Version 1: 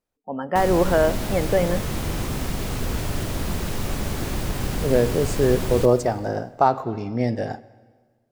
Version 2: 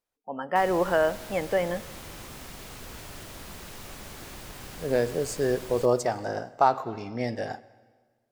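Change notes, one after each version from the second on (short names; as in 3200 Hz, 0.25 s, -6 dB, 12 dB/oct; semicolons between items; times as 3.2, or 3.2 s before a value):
background -9.5 dB; master: add low shelf 490 Hz -10.5 dB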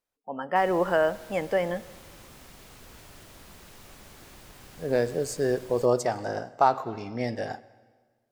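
background -7.0 dB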